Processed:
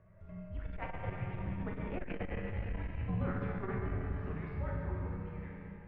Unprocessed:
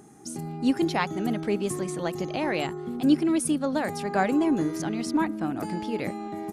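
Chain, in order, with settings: fade out at the end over 1.27 s; Doppler pass-by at 2.63 s, 36 m/s, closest 20 m; de-hum 53.08 Hz, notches 34; reverse; compression 4:1, threshold -41 dBFS, peak gain reduction 21 dB; reverse; feedback comb 84 Hz, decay 0.46 s, harmonics all, mix 80%; wide varispeed 1.11×; Schroeder reverb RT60 3 s, combs from 33 ms, DRR -2 dB; mistuned SSB -380 Hz 200–2700 Hz; transformer saturation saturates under 110 Hz; trim +13.5 dB

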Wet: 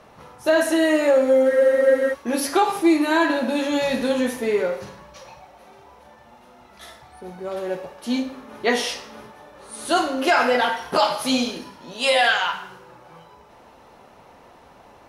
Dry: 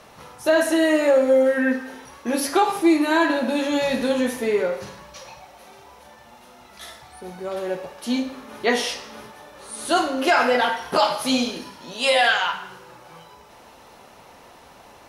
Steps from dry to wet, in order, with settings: spectral freeze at 1.51 s, 0.61 s; tape noise reduction on one side only decoder only

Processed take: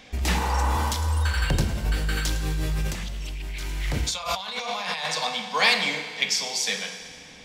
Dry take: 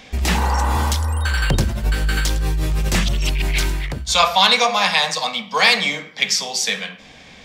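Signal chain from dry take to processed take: FDN reverb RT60 2 s, low-frequency decay 0.8×, high-frequency decay 1×, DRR 6.5 dB; 2.87–5.05 s: compressor with a negative ratio -24 dBFS, ratio -1; trim -6 dB

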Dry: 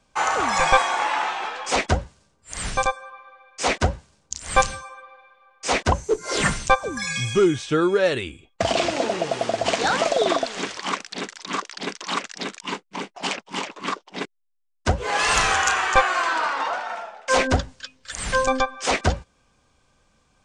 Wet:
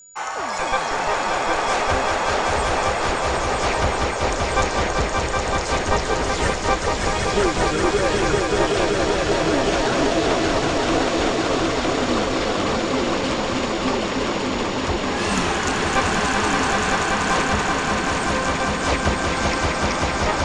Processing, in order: echo with a slow build-up 192 ms, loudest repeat 5, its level -4 dB; whistle 6.9 kHz -38 dBFS; ever faster or slower copies 161 ms, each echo -4 st, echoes 3; trim -6 dB

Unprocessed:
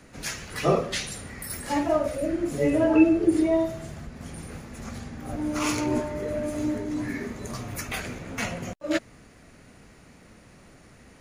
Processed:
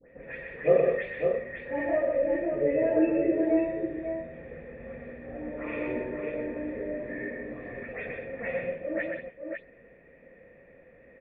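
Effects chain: delay that grows with frequency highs late, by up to 203 ms; cascade formant filter e; multi-tap echo 124/182/551 ms -4.5/-10.5/-5.5 dB; trim +8.5 dB

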